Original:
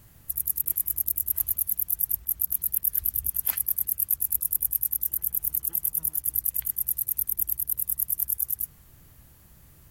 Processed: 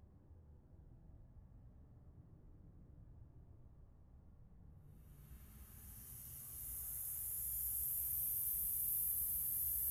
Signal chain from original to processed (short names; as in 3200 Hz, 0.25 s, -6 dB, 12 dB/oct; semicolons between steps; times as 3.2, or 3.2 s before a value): whole clip reversed; low-pass opened by the level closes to 550 Hz, open at -21.5 dBFS; Paulstretch 7×, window 0.25 s, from 0.49; gain -6 dB